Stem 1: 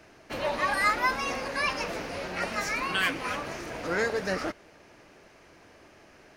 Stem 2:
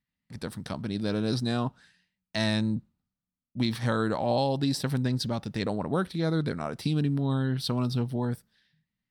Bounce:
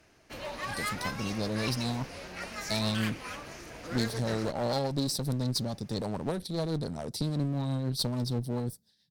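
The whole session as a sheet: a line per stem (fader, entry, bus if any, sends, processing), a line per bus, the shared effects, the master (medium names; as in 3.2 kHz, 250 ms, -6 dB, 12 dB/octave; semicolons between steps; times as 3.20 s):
-10.5 dB, 0.00 s, no send, bass shelf 160 Hz +8.5 dB
+0.5 dB, 0.35 s, no send, high-pass 56 Hz 12 dB/octave; rotary cabinet horn 7 Hz; high-order bell 1.9 kHz -13 dB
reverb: none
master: one-sided clip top -34.5 dBFS; treble shelf 3 kHz +8.5 dB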